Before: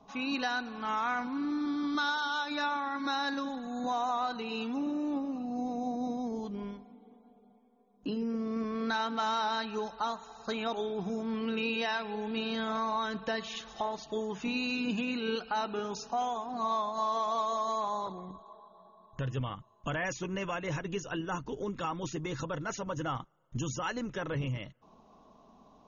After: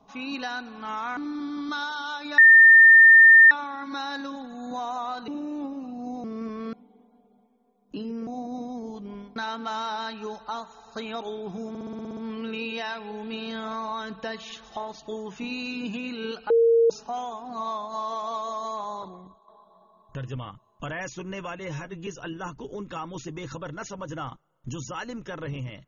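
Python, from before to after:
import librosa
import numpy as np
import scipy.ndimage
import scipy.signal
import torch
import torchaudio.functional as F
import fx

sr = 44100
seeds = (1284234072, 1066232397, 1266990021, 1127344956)

y = fx.edit(x, sr, fx.cut(start_s=1.17, length_s=0.26),
    fx.insert_tone(at_s=2.64, length_s=1.13, hz=1810.0, db=-8.5),
    fx.cut(start_s=4.41, length_s=0.39),
    fx.swap(start_s=5.76, length_s=1.09, other_s=8.39, other_length_s=0.49),
    fx.stutter(start_s=11.21, slice_s=0.06, count=9),
    fx.bleep(start_s=15.54, length_s=0.4, hz=461.0, db=-15.0),
    fx.fade_out_to(start_s=18.12, length_s=0.4, floor_db=-10.0),
    fx.stretch_span(start_s=20.63, length_s=0.32, factor=1.5), tone=tone)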